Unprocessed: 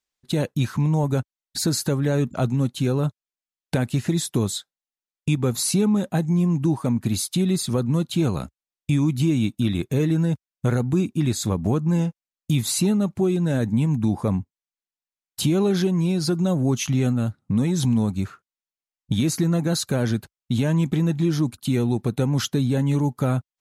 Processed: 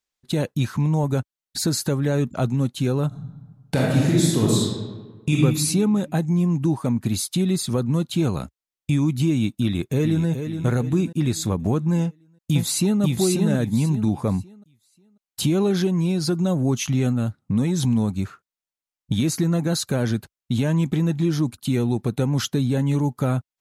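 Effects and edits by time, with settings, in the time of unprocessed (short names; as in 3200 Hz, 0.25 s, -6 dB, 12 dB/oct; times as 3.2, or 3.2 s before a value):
3.07–5.37 reverb throw, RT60 1.4 s, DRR -4 dB
9.62–10.28 echo throw 0.42 s, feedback 45%, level -8 dB
12.01–13.01 echo throw 0.54 s, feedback 25%, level -2.5 dB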